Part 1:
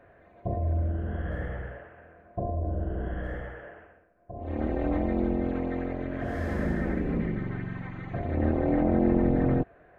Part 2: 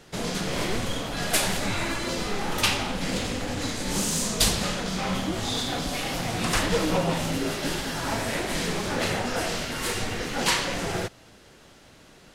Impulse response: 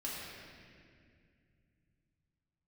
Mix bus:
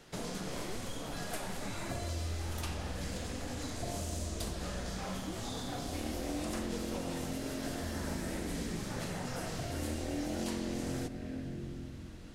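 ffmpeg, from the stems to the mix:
-filter_complex "[0:a]adelay=1450,volume=-1dB,asplit=2[link_01][link_02];[link_02]volume=-10.5dB[link_03];[1:a]volume=-6.5dB,asplit=2[link_04][link_05];[link_05]volume=-14.5dB[link_06];[2:a]atrim=start_sample=2205[link_07];[link_03][link_06]amix=inputs=2:normalize=0[link_08];[link_08][link_07]afir=irnorm=-1:irlink=0[link_09];[link_01][link_04][link_09]amix=inputs=3:normalize=0,acrossover=split=1600|5000[link_10][link_11][link_12];[link_10]acompressor=threshold=-37dB:ratio=4[link_13];[link_11]acompressor=threshold=-54dB:ratio=4[link_14];[link_12]acompressor=threshold=-48dB:ratio=4[link_15];[link_13][link_14][link_15]amix=inputs=3:normalize=0"

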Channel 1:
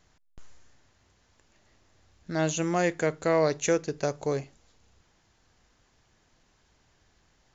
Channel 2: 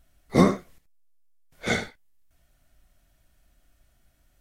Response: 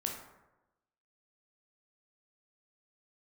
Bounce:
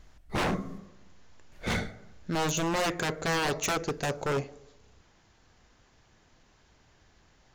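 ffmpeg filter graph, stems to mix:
-filter_complex "[0:a]volume=3dB,asplit=2[link_01][link_02];[link_02]volume=-16.5dB[link_03];[1:a]lowshelf=frequency=180:gain=11,volume=-5.5dB,asplit=2[link_04][link_05];[link_05]volume=-11dB[link_06];[2:a]atrim=start_sample=2205[link_07];[link_03][link_06]amix=inputs=2:normalize=0[link_08];[link_08][link_07]afir=irnorm=-1:irlink=0[link_09];[link_01][link_04][link_09]amix=inputs=3:normalize=0,highshelf=frequency=7600:gain=-8,aeval=exprs='0.075*(abs(mod(val(0)/0.075+3,4)-2)-1)':channel_layout=same"

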